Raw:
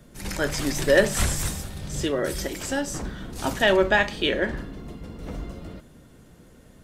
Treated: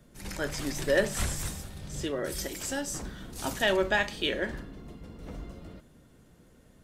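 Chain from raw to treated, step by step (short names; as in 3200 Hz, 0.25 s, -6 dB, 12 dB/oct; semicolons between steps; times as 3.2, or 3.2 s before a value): 2.32–4.6 high shelf 4400 Hz +7.5 dB; gain -7 dB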